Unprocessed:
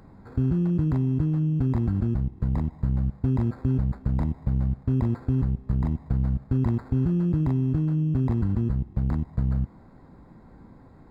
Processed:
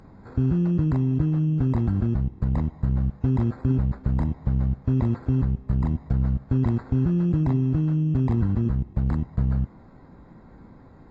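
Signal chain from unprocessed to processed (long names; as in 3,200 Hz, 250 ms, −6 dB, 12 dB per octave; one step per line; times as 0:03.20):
level +1.5 dB
AAC 24 kbit/s 32,000 Hz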